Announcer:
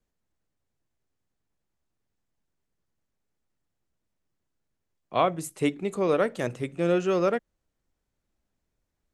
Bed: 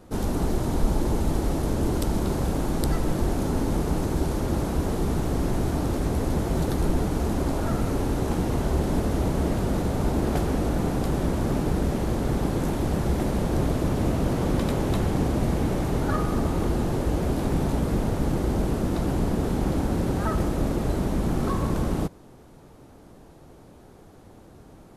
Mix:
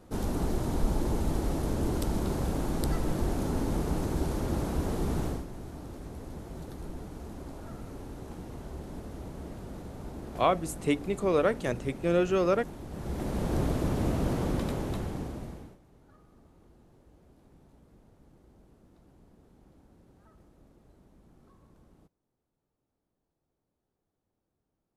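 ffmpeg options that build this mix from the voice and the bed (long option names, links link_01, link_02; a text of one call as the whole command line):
ffmpeg -i stem1.wav -i stem2.wav -filter_complex "[0:a]adelay=5250,volume=-1.5dB[link_01];[1:a]volume=7.5dB,afade=type=out:start_time=5.25:duration=0.2:silence=0.251189,afade=type=in:start_time=12.89:duration=0.64:silence=0.237137,afade=type=out:start_time=14.31:duration=1.47:silence=0.0316228[link_02];[link_01][link_02]amix=inputs=2:normalize=0" out.wav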